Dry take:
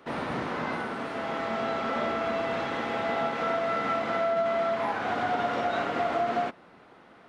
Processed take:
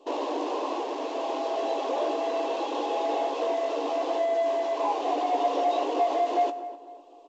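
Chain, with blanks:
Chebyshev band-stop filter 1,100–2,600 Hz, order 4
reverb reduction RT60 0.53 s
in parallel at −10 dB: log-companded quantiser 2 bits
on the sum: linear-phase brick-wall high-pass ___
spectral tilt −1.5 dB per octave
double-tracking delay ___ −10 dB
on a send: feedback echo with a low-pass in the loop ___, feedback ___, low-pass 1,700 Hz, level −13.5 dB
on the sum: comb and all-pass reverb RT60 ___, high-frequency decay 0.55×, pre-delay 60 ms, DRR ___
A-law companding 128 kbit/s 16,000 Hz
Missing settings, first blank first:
270 Hz, 17 ms, 252 ms, 42%, 0.5 s, 17 dB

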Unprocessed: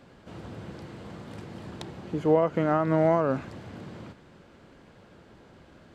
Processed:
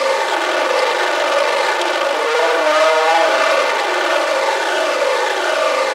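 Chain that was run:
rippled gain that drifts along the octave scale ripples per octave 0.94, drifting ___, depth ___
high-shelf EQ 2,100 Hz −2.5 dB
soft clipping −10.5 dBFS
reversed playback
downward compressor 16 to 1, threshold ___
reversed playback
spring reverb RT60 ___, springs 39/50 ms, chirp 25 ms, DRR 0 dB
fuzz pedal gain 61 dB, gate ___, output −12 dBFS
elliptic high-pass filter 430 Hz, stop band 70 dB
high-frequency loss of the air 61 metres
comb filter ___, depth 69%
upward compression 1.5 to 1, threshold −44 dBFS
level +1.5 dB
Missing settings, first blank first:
−1.4 Hz, 19 dB, −34 dBFS, 1 s, −56 dBFS, 3.4 ms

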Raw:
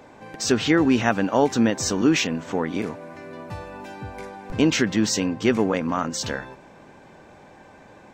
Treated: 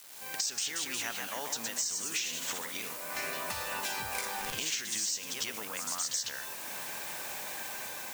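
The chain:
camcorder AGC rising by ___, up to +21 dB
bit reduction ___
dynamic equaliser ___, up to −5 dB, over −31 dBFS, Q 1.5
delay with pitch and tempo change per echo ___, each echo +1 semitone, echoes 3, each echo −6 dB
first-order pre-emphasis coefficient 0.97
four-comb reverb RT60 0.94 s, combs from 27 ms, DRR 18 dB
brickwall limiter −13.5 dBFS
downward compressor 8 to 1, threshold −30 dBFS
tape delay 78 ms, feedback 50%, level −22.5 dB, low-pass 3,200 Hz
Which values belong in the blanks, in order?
45 dB per second, 7 bits, 310 Hz, 201 ms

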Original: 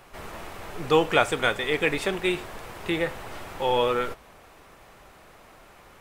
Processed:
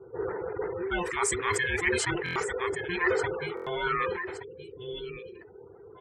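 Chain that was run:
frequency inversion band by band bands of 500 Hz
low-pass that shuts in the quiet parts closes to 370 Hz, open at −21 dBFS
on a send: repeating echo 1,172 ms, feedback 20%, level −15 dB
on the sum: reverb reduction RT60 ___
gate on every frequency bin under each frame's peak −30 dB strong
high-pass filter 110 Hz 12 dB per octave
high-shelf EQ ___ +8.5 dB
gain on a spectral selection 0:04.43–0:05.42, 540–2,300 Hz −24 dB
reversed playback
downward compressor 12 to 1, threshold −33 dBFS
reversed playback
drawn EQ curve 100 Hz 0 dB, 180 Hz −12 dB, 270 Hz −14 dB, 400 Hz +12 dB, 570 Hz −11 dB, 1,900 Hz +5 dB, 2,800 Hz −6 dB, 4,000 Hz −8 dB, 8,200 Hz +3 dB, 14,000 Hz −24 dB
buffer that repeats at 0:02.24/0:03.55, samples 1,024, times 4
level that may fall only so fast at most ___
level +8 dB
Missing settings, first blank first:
0.84 s, 6,000 Hz, 38 dB per second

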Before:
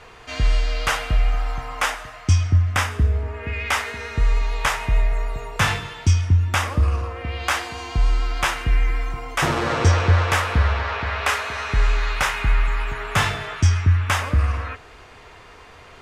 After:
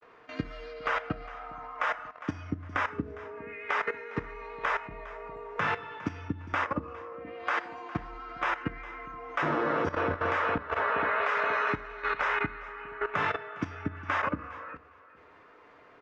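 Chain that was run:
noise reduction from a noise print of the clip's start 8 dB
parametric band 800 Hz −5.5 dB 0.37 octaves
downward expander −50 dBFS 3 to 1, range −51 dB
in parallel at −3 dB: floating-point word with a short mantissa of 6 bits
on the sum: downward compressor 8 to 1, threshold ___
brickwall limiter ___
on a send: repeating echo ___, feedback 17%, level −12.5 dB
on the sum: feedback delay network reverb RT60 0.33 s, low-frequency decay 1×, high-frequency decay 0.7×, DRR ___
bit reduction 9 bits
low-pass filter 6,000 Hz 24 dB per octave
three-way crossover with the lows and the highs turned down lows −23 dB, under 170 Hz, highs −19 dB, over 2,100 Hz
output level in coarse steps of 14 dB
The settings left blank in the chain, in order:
−16 dBFS, −9.5 dBFS, 407 ms, 9 dB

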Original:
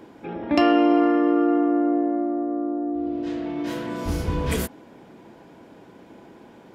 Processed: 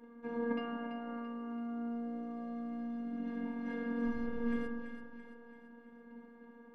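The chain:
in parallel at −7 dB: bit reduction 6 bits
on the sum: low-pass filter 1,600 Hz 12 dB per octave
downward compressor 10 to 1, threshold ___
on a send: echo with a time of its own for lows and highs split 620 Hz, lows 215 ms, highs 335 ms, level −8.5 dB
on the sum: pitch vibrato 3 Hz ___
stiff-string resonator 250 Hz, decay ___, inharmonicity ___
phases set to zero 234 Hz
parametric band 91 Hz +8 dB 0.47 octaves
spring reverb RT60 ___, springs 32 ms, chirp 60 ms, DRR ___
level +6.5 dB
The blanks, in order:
−22 dBFS, 9.7 cents, 0.27 s, 0.03, 1.5 s, 7.5 dB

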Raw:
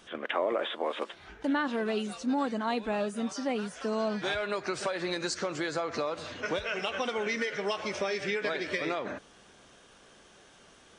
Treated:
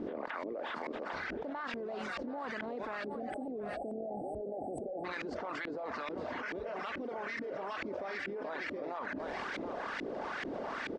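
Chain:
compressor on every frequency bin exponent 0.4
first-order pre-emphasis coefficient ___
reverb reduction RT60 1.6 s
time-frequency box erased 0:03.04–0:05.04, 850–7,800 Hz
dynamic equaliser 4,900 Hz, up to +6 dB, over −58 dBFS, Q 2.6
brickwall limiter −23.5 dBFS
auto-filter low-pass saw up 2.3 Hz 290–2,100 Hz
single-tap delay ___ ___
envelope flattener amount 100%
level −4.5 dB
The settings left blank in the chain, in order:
0.9, 730 ms, −20.5 dB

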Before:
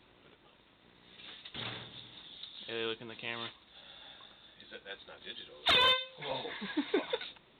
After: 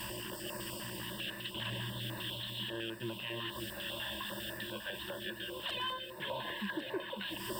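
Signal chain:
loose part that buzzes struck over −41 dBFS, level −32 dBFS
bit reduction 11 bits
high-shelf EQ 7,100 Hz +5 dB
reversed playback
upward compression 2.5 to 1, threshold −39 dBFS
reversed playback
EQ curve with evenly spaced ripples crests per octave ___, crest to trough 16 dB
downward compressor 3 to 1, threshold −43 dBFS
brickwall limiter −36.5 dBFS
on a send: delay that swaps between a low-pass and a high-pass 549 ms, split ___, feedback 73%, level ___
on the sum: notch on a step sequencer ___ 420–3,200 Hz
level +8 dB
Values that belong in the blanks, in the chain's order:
1.3, 1,900 Hz, −7 dB, 10 Hz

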